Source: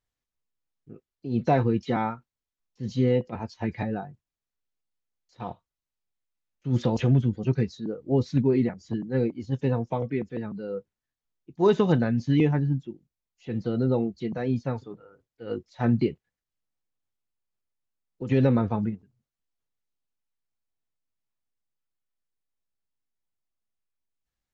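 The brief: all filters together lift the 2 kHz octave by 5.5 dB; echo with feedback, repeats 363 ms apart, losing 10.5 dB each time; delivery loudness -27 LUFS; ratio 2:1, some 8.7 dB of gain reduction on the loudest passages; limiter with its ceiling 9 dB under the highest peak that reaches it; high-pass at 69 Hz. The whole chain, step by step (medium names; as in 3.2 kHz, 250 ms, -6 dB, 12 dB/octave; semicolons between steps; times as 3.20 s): high-pass 69 Hz; peaking EQ 2 kHz +7 dB; compression 2:1, threshold -32 dBFS; peak limiter -25 dBFS; feedback delay 363 ms, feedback 30%, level -10.5 dB; trim +9.5 dB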